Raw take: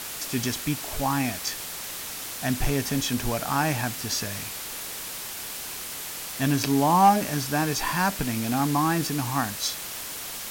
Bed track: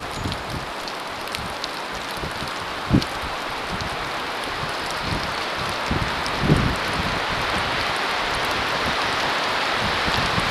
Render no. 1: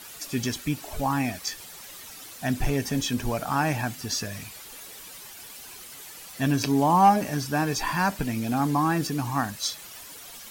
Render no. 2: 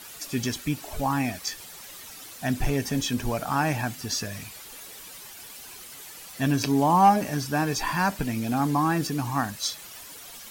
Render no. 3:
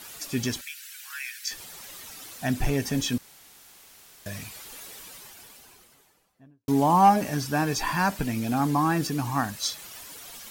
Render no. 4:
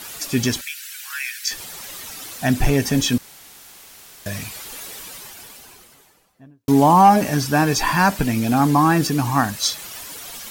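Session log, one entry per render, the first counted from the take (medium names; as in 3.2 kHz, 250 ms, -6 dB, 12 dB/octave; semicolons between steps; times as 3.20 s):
noise reduction 11 dB, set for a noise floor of -36 dBFS
no audible change
0.61–1.51 s: Chebyshev high-pass 1.5 kHz, order 5; 3.18–4.26 s: room tone; 4.87–6.68 s: studio fade out
trim +8 dB; peak limiter -3 dBFS, peak gain reduction 3 dB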